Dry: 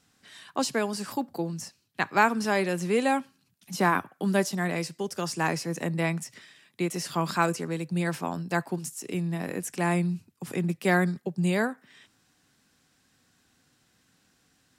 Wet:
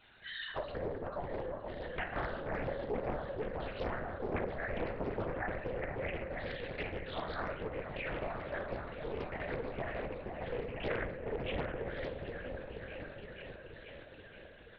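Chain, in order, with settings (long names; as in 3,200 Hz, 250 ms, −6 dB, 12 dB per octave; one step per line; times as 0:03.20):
elliptic high-pass filter 410 Hz, stop band 40 dB
gate on every frequency bin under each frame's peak −10 dB strong
parametric band 1,000 Hz −14 dB 0.46 octaves
downward compressor 6 to 1, threshold −51 dBFS, peak gain reduction 25 dB
on a send: echo whose low-pass opens from repeat to repeat 476 ms, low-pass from 750 Hz, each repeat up 1 octave, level −3 dB
on the sum: rectangular room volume 270 cubic metres, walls mixed, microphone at 1.2 metres
linear-prediction vocoder at 8 kHz whisper
highs frequency-modulated by the lows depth 0.88 ms
level +10.5 dB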